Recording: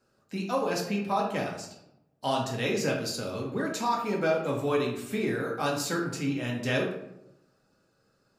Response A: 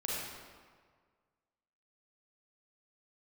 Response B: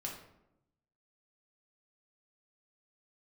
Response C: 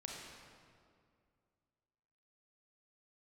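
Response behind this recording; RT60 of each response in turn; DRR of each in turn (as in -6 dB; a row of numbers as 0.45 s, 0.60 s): B; 1.7 s, 0.85 s, 2.2 s; -6.0 dB, -2.0 dB, -2.0 dB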